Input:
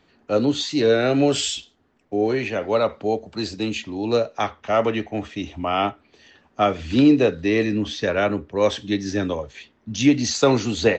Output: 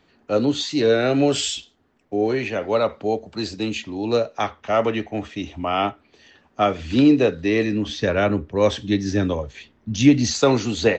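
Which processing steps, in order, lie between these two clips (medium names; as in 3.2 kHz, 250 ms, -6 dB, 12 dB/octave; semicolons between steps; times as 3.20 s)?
7.89–10.41 s: bass shelf 180 Hz +8.5 dB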